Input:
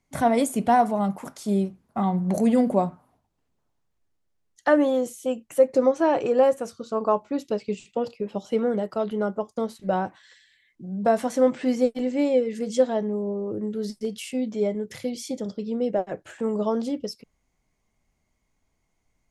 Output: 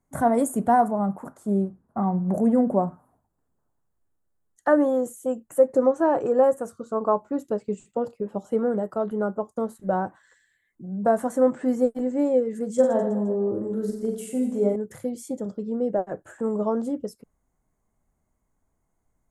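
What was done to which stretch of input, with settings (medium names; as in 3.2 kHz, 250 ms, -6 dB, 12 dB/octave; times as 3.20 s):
0.88–2.88 s: treble shelf 2.6 kHz -10 dB
12.74–14.76 s: reverse bouncing-ball echo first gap 40 ms, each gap 1.3×, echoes 6
whole clip: high-order bell 3.5 kHz -15.5 dB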